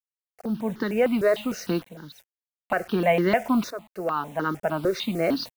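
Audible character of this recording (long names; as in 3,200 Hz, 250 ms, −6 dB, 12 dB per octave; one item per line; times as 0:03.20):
a quantiser's noise floor 8 bits, dither none
tremolo saw up 0.54 Hz, depth 80%
notches that jump at a steady rate 6.6 Hz 820–2,500 Hz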